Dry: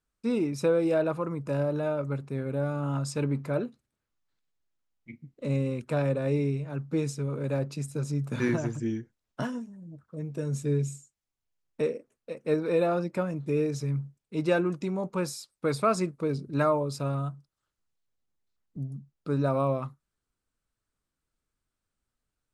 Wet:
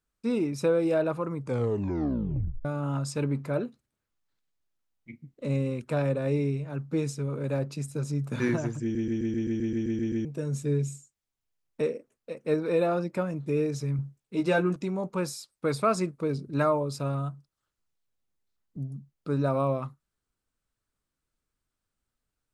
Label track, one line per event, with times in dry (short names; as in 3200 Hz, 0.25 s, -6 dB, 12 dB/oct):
1.400000	1.400000	tape stop 1.25 s
8.820000	8.820000	stutter in place 0.13 s, 11 plays
13.970000	14.760000	doubler 16 ms -4 dB